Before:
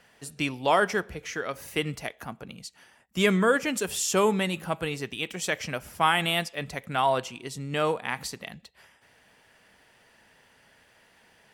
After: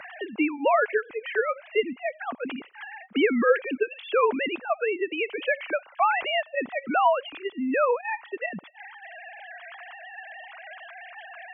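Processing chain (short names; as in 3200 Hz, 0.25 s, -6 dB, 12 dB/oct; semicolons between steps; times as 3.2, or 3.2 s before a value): sine-wave speech; three-band squash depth 70%; gain +2.5 dB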